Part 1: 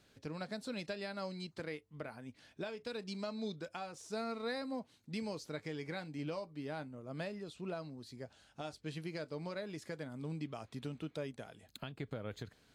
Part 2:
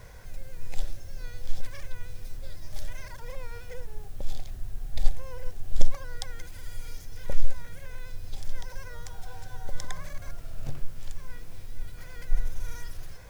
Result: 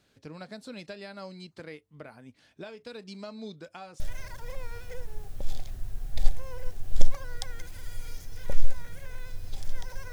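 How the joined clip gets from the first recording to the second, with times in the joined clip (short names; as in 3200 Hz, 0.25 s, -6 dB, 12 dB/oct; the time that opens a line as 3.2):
part 1
4 switch to part 2 from 2.8 s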